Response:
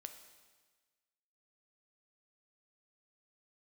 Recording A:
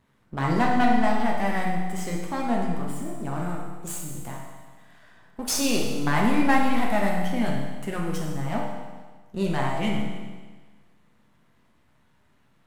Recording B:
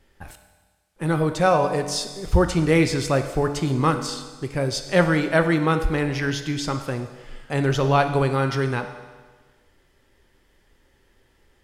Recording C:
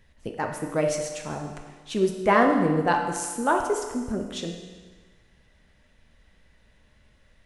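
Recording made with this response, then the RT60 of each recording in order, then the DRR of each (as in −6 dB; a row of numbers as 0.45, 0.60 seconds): B; 1.4, 1.4, 1.4 seconds; −2.5, 6.5, 2.0 decibels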